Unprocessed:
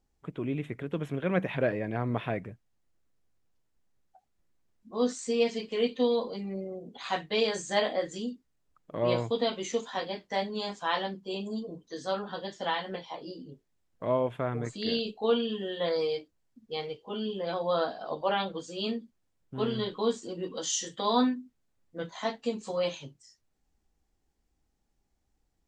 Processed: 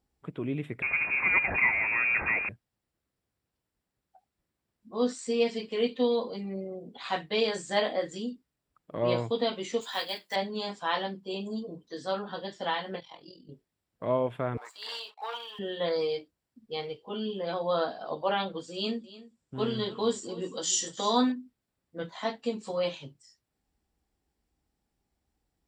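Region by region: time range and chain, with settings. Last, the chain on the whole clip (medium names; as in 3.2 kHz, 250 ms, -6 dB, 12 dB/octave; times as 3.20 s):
0.82–2.49 s: jump at every zero crossing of -28.5 dBFS + frequency inversion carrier 2.6 kHz
9.81–10.36 s: block-companded coder 7-bit + tilt EQ +4 dB/octave + band-stop 5.6 kHz, Q 10
13.00–13.49 s: peaking EQ 480 Hz -9.5 dB 2.9 oct + AM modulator 42 Hz, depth 50% + doubling 25 ms -10.5 dB
14.57–15.59 s: waveshaping leveller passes 2 + ladder high-pass 790 Hz, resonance 55%
18.74–21.32 s: resonant low-pass 7.5 kHz, resonance Q 3.1 + delay 297 ms -17.5 dB
whole clip: high-pass 47 Hz; band-stop 6.4 kHz, Q 5.8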